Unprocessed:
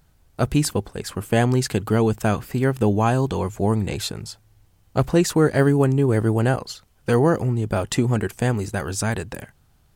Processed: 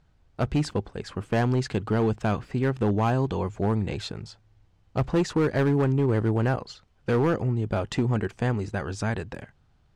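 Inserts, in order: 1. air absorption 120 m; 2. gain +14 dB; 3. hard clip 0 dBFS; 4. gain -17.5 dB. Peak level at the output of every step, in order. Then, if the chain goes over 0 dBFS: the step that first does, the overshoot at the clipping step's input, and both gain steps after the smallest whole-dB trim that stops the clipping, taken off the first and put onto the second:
-5.5, +8.5, 0.0, -17.5 dBFS; step 2, 8.5 dB; step 2 +5 dB, step 4 -8.5 dB

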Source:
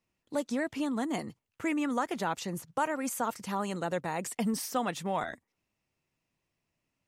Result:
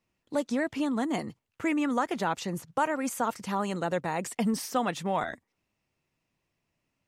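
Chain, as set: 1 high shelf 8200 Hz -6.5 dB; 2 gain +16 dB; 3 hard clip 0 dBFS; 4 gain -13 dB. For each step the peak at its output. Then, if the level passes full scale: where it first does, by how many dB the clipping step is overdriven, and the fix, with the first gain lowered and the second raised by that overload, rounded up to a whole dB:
-18.0, -2.0, -2.0, -15.0 dBFS; no overload

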